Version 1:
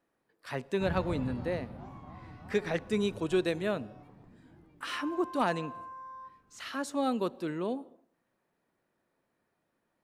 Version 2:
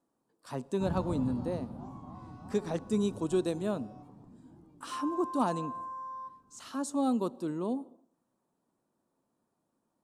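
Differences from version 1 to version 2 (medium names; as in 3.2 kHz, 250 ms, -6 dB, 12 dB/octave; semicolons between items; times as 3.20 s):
speech -5.0 dB; first sound -3.5 dB; master: add ten-band graphic EQ 125 Hz +3 dB, 250 Hz +8 dB, 1 kHz +7 dB, 2 kHz -12 dB, 8 kHz +10 dB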